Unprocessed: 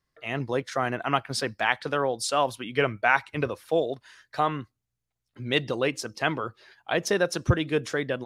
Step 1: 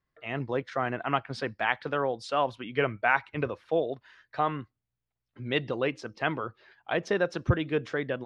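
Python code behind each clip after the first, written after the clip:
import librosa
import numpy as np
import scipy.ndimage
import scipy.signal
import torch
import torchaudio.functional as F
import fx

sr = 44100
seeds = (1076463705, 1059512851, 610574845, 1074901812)

y = scipy.signal.sosfilt(scipy.signal.butter(2, 3100.0, 'lowpass', fs=sr, output='sos'), x)
y = y * 10.0 ** (-2.5 / 20.0)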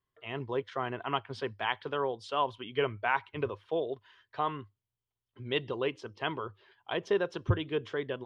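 y = fx.graphic_eq_31(x, sr, hz=(100, 400, 1000, 3150), db=(11, 9, 9, 11))
y = y * 10.0 ** (-7.5 / 20.0)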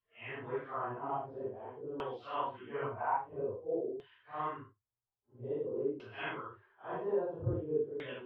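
y = fx.phase_scramble(x, sr, seeds[0], window_ms=200)
y = fx.filter_lfo_lowpass(y, sr, shape='saw_down', hz=0.5, low_hz=330.0, high_hz=3000.0, q=2.4)
y = y * 10.0 ** (-7.5 / 20.0)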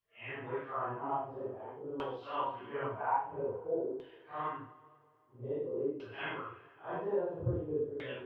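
y = fx.rev_double_slope(x, sr, seeds[1], early_s=0.36, late_s=2.3, knee_db=-17, drr_db=5.0)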